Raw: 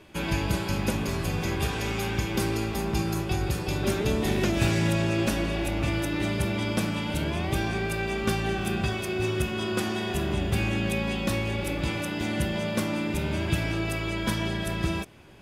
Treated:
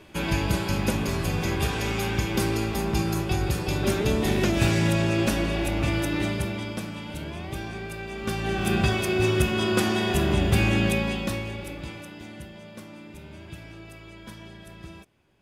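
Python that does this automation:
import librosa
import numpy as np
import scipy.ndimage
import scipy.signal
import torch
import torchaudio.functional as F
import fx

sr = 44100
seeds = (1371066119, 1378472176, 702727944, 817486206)

y = fx.gain(x, sr, db=fx.line((6.18, 2.0), (6.82, -6.5), (8.11, -6.5), (8.74, 5.0), (10.84, 5.0), (11.53, -5.0), (12.54, -15.0)))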